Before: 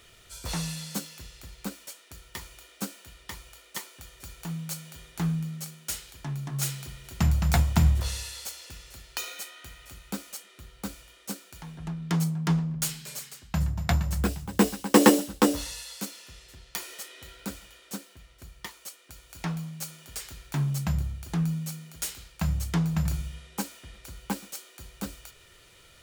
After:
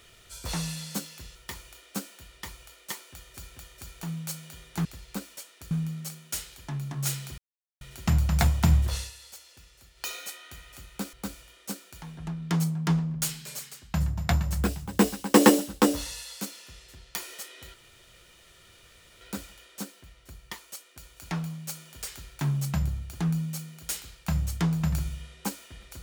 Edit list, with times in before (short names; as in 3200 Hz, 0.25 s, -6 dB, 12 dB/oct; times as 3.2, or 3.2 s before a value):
1.35–2.21 move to 5.27
3.98–4.42 loop, 2 plays
6.94 insert silence 0.43 s
8.1–9.22 dip -9 dB, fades 0.15 s
10.26–10.73 cut
17.34 insert room tone 1.47 s